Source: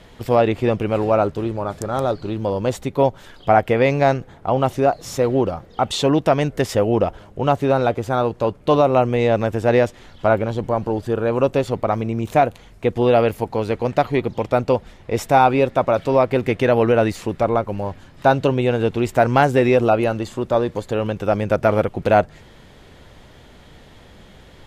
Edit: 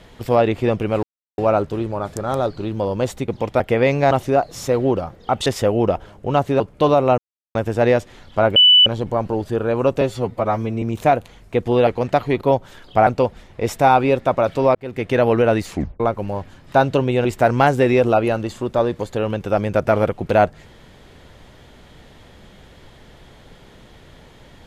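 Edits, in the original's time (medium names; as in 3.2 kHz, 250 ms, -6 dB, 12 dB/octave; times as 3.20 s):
1.03 s: insert silence 0.35 s
2.93–3.59 s: swap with 14.25–14.57 s
4.10–4.61 s: delete
5.96–6.59 s: delete
7.73–8.47 s: delete
9.05–9.42 s: mute
10.43 s: add tone 2.98 kHz -7 dBFS 0.30 s
11.58–12.12 s: stretch 1.5×
13.17–13.71 s: delete
16.25–16.67 s: fade in
17.22 s: tape stop 0.28 s
18.75–19.01 s: delete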